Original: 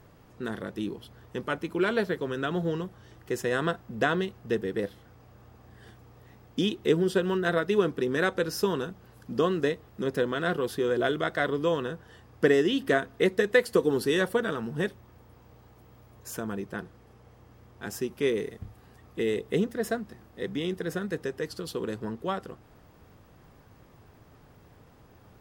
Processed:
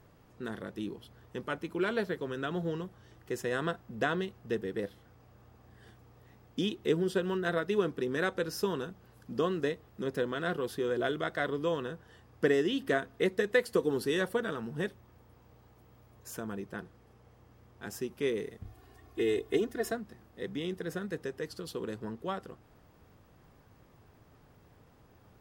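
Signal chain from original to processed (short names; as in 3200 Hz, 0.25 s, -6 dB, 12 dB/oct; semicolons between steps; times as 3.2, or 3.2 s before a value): 18.65–19.92 comb 2.8 ms, depth 97%; gain -5 dB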